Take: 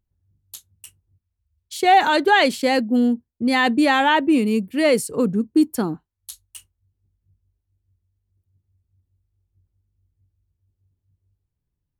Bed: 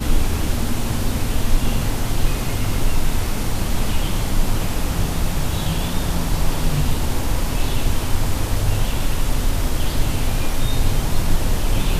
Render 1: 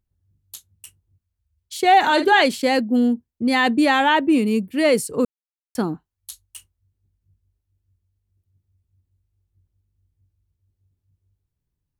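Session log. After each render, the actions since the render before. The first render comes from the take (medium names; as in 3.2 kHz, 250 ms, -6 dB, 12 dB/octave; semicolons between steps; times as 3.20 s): 1.99–2.42 s: doubling 48 ms -9.5 dB; 5.25–5.75 s: mute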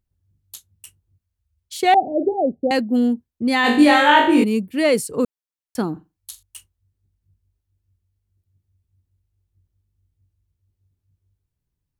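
1.94–2.71 s: Chebyshev low-pass 780 Hz, order 10; 3.62–4.44 s: flutter echo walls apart 3.5 m, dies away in 0.54 s; 5.92–6.43 s: flutter echo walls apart 7.6 m, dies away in 0.23 s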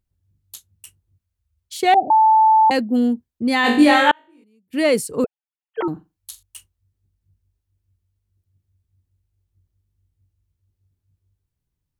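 2.10–2.70 s: bleep 877 Hz -9.5 dBFS; 4.11–4.73 s: inverted gate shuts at -18 dBFS, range -38 dB; 5.24–5.88 s: formants replaced by sine waves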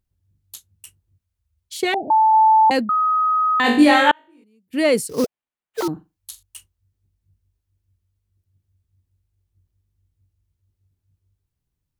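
1.84–2.34 s: band-stop 750 Hz, Q 5.1; 2.89–3.60 s: bleep 1.26 kHz -15 dBFS; 5.09–5.88 s: sample-rate reducer 5.5 kHz, jitter 20%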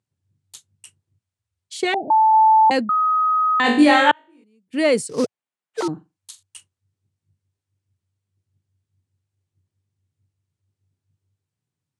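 elliptic band-pass 110–9000 Hz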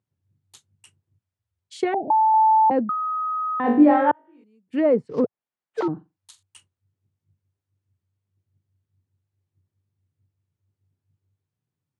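low-pass that closes with the level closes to 970 Hz, closed at -16 dBFS; treble shelf 2.8 kHz -10.5 dB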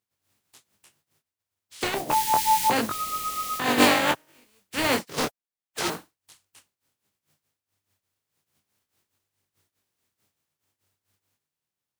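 spectral contrast reduction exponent 0.3; detune thickener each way 11 cents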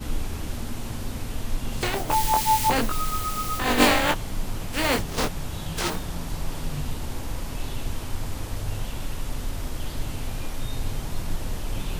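add bed -10.5 dB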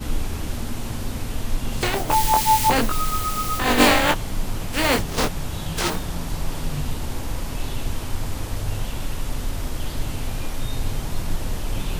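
trim +3.5 dB; peak limiter -3 dBFS, peak gain reduction 1.5 dB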